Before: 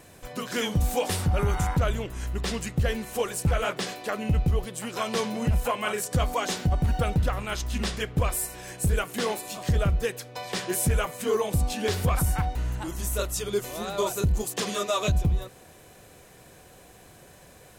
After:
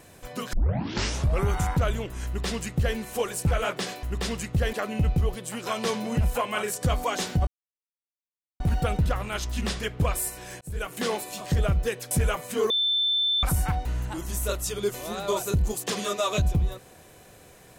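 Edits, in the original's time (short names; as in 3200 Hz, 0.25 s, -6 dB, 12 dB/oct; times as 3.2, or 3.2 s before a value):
0.53 tape start 0.92 s
2.26–2.96 copy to 4.03
6.77 insert silence 1.13 s
8.78–9.15 fade in
10.28–10.81 cut
11.4–12.13 bleep 3540 Hz -21 dBFS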